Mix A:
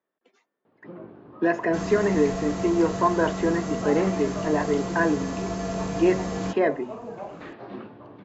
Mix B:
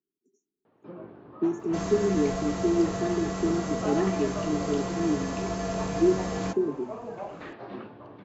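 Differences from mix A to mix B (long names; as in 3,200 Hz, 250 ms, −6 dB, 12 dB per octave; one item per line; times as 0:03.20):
speech: add linear-phase brick-wall band-stop 440–5,500 Hz
master: add parametric band 220 Hz −2.5 dB 1.5 octaves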